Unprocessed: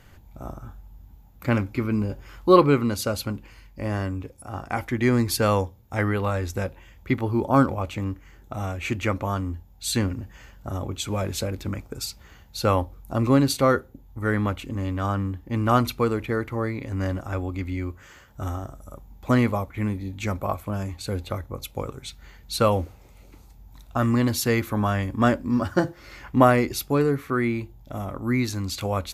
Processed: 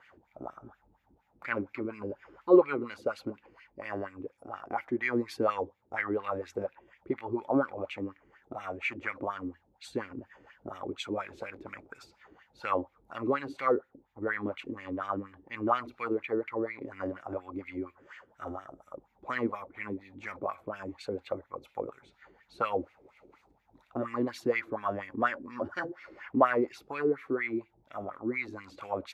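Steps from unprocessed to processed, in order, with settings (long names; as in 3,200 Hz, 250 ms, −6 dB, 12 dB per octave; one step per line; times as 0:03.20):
LFO wah 4.2 Hz 320–2,300 Hz, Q 3.7
in parallel at −1 dB: downward compressor, threshold −41 dBFS, peak gain reduction 23.5 dB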